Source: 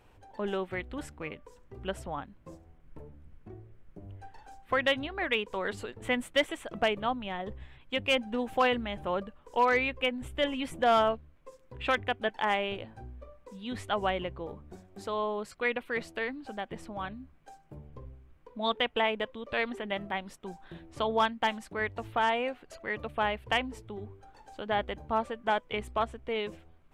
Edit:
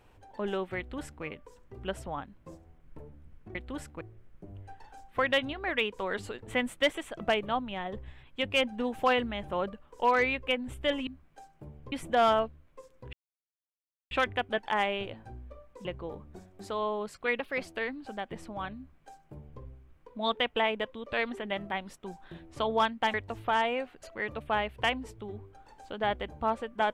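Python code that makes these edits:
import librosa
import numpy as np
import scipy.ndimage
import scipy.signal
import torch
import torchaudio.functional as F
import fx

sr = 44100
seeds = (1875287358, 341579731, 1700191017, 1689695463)

y = fx.edit(x, sr, fx.duplicate(start_s=0.78, length_s=0.46, to_s=3.55),
    fx.insert_silence(at_s=11.82, length_s=0.98),
    fx.cut(start_s=13.56, length_s=0.66),
    fx.speed_span(start_s=15.77, length_s=0.29, speed=1.12),
    fx.duplicate(start_s=17.17, length_s=0.85, to_s=10.61),
    fx.cut(start_s=21.54, length_s=0.28), tone=tone)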